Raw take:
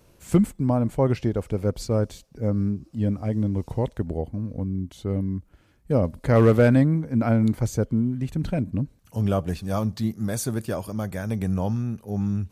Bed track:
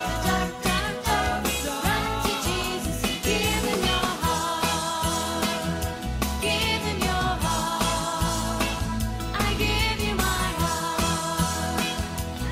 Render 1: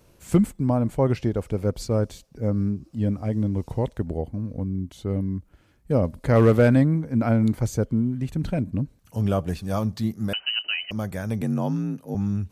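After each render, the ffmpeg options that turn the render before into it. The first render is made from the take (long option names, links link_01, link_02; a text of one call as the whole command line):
ffmpeg -i in.wav -filter_complex "[0:a]asettb=1/sr,asplit=3[link_01][link_02][link_03];[link_01]atrim=end=10.334[link_04];[link_02]atrim=start=10.33:end=10.91,asetpts=PTS-STARTPTS,afade=type=in:duration=0.004:curve=qsin,afade=type=out:start_time=0.576:duration=0.004:curve=qsin,lowpass=frequency=2600:width_type=q:width=0.5098,lowpass=frequency=2600:width_type=q:width=0.6013,lowpass=frequency=2600:width_type=q:width=0.9,lowpass=frequency=2600:width_type=q:width=2.563,afreqshift=-3100[link_05];[link_03]atrim=start=10.906[link_06];[link_04][link_05]acrossfade=duration=0.004:curve1=hsin:curve2=qsin[link_07];[link_07][link_06]acrossfade=duration=0.004:curve1=qsin:curve2=hsin,asettb=1/sr,asplit=3[link_08][link_09][link_10];[link_08]atrim=end=11.414[link_11];[link_09]atrim=start=11.41:end=12.15,asetpts=PTS-STARTPTS,afade=type=in:duration=0.004:curve=qsin,afade=type=out:start_time=0.736:duration=0.004:curve=qsin,afreqshift=46[link_12];[link_10]atrim=start=12.146[link_13];[link_11][link_12]acrossfade=duration=0.004:curve1=hsin:curve2=qsin[link_14];[link_14][link_13]acrossfade=duration=0.004:curve1=qsin:curve2=hsin" out.wav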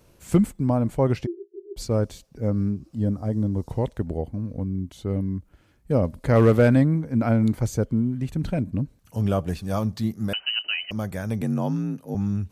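ffmpeg -i in.wav -filter_complex "[0:a]asplit=3[link_01][link_02][link_03];[link_01]afade=type=out:start_time=1.25:duration=0.02[link_04];[link_02]asuperpass=centerf=370:order=12:qfactor=5.7,afade=type=in:start_time=1.25:duration=0.02,afade=type=out:start_time=1.76:duration=0.02[link_05];[link_03]afade=type=in:start_time=1.76:duration=0.02[link_06];[link_04][link_05][link_06]amix=inputs=3:normalize=0,asettb=1/sr,asplit=3[link_07][link_08][link_09];[link_07]atrim=end=2.974[link_10];[link_08]atrim=start=2.97:end=3.69,asetpts=PTS-STARTPTS,afade=type=in:duration=0.004:curve=qsin,afade=type=out:start_time=0.716:duration=0.004:curve=qsin,equalizer=frequency=2500:width=2.3:gain=-14[link_11];[link_09]atrim=start=3.686[link_12];[link_10][link_11]acrossfade=duration=0.004:curve1=hsin:curve2=qsin[link_13];[link_13][link_12]acrossfade=duration=0.004:curve1=qsin:curve2=hsin" out.wav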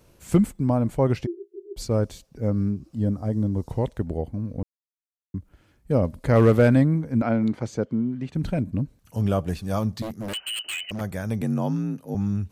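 ffmpeg -i in.wav -filter_complex "[0:a]asettb=1/sr,asplit=3[link_01][link_02][link_03];[link_01]atrim=end=7.224[link_04];[link_02]atrim=start=7.22:end=8.35,asetpts=PTS-STARTPTS,afade=type=in:duration=0.004:curve=qsin,afade=type=out:start_time=1.126:duration=0.004:curve=qsin,highpass=170,lowpass=4700[link_05];[link_03]atrim=start=8.346[link_06];[link_04][link_05]acrossfade=duration=0.004:curve1=hsin:curve2=qsin[link_07];[link_07][link_06]acrossfade=duration=0.004:curve1=qsin:curve2=hsin,asettb=1/sr,asplit=3[link_08][link_09][link_10];[link_08]atrim=end=10.024[link_11];[link_09]atrim=start=10.02:end=11.01,asetpts=PTS-STARTPTS,afade=type=in:duration=0.004:curve=qsin,afade=type=out:start_time=0.986:duration=0.004:curve=qsin,aeval=exprs='0.0562*(abs(mod(val(0)/0.0562+3,4)-2)-1)':channel_layout=same[link_12];[link_10]atrim=start=11.006[link_13];[link_11][link_12]acrossfade=duration=0.004:curve1=hsin:curve2=qsin[link_14];[link_14][link_13]acrossfade=duration=0.004:curve1=qsin:curve2=hsin,asplit=3[link_15][link_16][link_17];[link_15]atrim=end=4.63,asetpts=PTS-STARTPTS,afade=type=out:start_time=4.626:duration=0.004:curve=hsin[link_18];[link_16]atrim=start=4.63:end=5.34,asetpts=PTS-STARTPTS,volume=0[link_19];[link_17]atrim=start=5.34,asetpts=PTS-STARTPTS,afade=type=in:duration=0.004:curve=hsin[link_20];[link_18][link_19][link_20]concat=n=3:v=0:a=1" out.wav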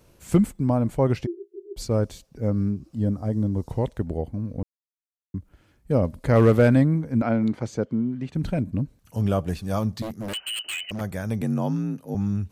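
ffmpeg -i in.wav -af anull out.wav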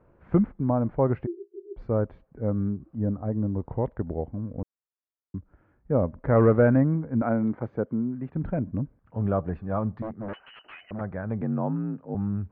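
ffmpeg -i in.wav -af "lowpass=frequency=1600:width=0.5412,lowpass=frequency=1600:width=1.3066,lowshelf=frequency=330:gain=-4" out.wav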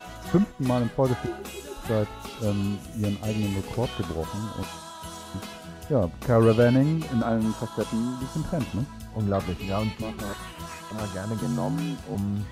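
ffmpeg -i in.wav -i bed.wav -filter_complex "[1:a]volume=-13.5dB[link_01];[0:a][link_01]amix=inputs=2:normalize=0" out.wav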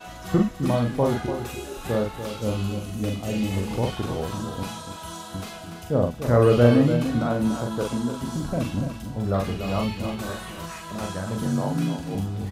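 ffmpeg -i in.wav -filter_complex "[0:a]asplit=2[link_01][link_02];[link_02]adelay=42,volume=-3.5dB[link_03];[link_01][link_03]amix=inputs=2:normalize=0,aecho=1:1:290:0.355" out.wav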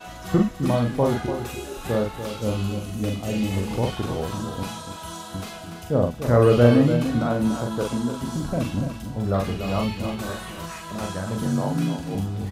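ffmpeg -i in.wav -af "volume=1dB" out.wav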